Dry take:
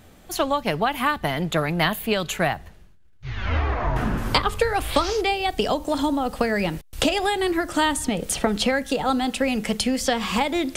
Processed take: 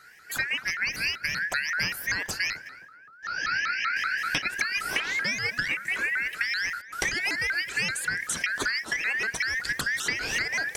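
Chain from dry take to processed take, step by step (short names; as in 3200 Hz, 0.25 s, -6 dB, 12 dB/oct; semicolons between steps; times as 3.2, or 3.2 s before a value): four-band scrambler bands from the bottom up 3142; compressor 3:1, threshold -22 dBFS, peak gain reduction 6.5 dB; tape echo 0.261 s, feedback 40%, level -11.5 dB, low-pass 1000 Hz; shaped vibrato saw up 5.2 Hz, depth 250 cents; gain -3 dB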